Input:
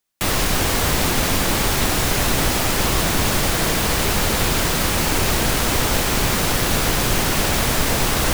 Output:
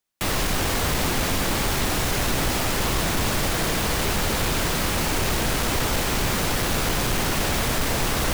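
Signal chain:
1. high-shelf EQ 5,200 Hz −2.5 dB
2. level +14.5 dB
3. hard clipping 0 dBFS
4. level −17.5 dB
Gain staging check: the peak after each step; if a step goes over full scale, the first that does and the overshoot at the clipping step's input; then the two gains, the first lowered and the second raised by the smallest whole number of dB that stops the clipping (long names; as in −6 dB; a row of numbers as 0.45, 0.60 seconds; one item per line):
−5.5, +9.0, 0.0, −17.5 dBFS
step 2, 9.0 dB
step 2 +5.5 dB, step 4 −8.5 dB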